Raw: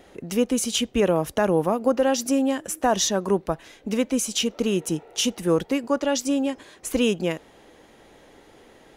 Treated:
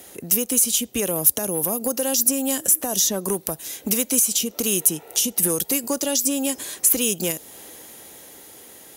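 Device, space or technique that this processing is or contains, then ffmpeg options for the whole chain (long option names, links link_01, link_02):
FM broadcast chain: -filter_complex "[0:a]highpass=65,dynaudnorm=framelen=290:gausssize=11:maxgain=5.5dB,acrossover=split=650|3600[link_01][link_02][link_03];[link_01]acompressor=threshold=-23dB:ratio=4[link_04];[link_02]acompressor=threshold=-36dB:ratio=4[link_05];[link_03]acompressor=threshold=-34dB:ratio=4[link_06];[link_04][link_05][link_06]amix=inputs=3:normalize=0,aemphasis=mode=production:type=50fm,alimiter=limit=-16dB:level=0:latency=1:release=349,asoftclip=type=hard:threshold=-18.5dB,lowpass=frequency=15000:width=0.5412,lowpass=frequency=15000:width=1.3066,aemphasis=mode=production:type=50fm,volume=1.5dB"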